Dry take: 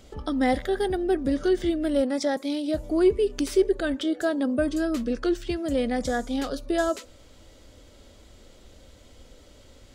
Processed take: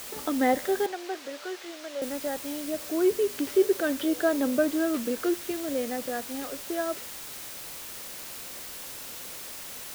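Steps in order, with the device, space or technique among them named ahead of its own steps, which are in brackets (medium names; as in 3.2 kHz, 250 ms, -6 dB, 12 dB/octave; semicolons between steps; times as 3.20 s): shortwave radio (band-pass 270–2600 Hz; tremolo 0.23 Hz, depth 57%; white noise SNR 11 dB); 0.86–2.02 s: three-band isolator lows -21 dB, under 490 Hz, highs -15 dB, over 6.2 kHz; trim +1.5 dB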